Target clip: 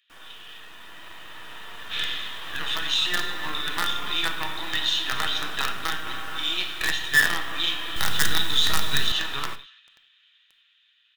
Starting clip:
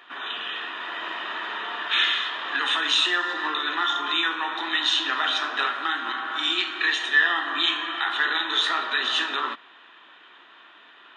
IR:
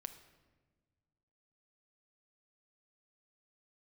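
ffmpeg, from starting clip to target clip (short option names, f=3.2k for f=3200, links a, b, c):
-filter_complex "[0:a]acrossover=split=2500[a][b];[a]acrusher=bits=4:dc=4:mix=0:aa=0.000001[c];[b]asplit=2[d][e];[e]adelay=255,lowpass=f=3.4k:p=1,volume=-9.5dB,asplit=2[f][g];[g]adelay=255,lowpass=f=3.4k:p=1,volume=0.36,asplit=2[h][i];[i]adelay=255,lowpass=f=3.4k:p=1,volume=0.36,asplit=2[j][k];[k]adelay=255,lowpass=f=3.4k:p=1,volume=0.36[l];[d][f][h][j][l]amix=inputs=5:normalize=0[m];[c][m]amix=inputs=2:normalize=0[n];[1:a]atrim=start_sample=2205,afade=t=out:st=0.16:d=0.01,atrim=end_sample=7497[o];[n][o]afir=irnorm=-1:irlink=0,dynaudnorm=f=650:g=7:m=11.5dB,asettb=1/sr,asplit=3[p][q][r];[p]atrim=end=7.964[s];[q]atrim=start=7.96:end=9.12,asetpts=PTS-STARTPTS,afade=t=in:d=0.004:c=qsin,afade=t=out:st=1.156:d=0.004:c=qsin,bass=f=250:g=11,treble=f=4k:g=9[t];[r]atrim=start=9.116[u];[s][t]acrossfade=d=0.004:c1=hsin:c2=qsin[v];[v][u]acrossfade=d=0.004:c1=qsin:c2=hsin,volume=-6.5dB"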